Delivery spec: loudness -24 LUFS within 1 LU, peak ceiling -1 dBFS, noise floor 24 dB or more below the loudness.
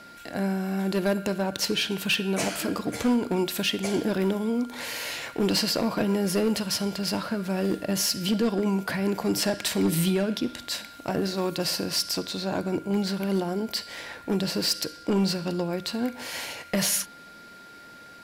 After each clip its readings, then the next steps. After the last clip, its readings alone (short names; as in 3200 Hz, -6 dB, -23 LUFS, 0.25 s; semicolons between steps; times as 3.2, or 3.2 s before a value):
clipped 0.6%; flat tops at -17.5 dBFS; steady tone 1400 Hz; tone level -46 dBFS; loudness -27.0 LUFS; peak -17.5 dBFS; loudness target -24.0 LUFS
-> clip repair -17.5 dBFS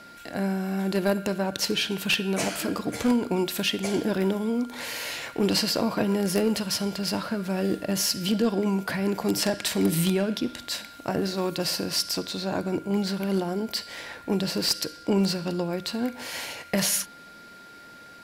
clipped 0.0%; steady tone 1400 Hz; tone level -46 dBFS
-> notch 1400 Hz, Q 30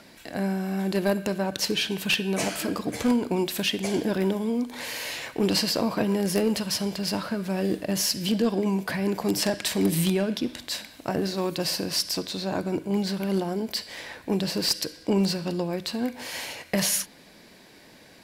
steady tone none; loudness -26.5 LUFS; peak -8.5 dBFS; loudness target -24.0 LUFS
-> gain +2.5 dB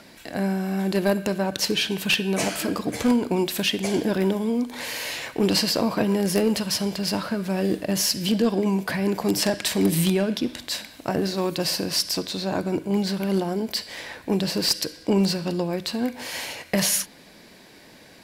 loudness -24.0 LUFS; peak -6.0 dBFS; noise floor -49 dBFS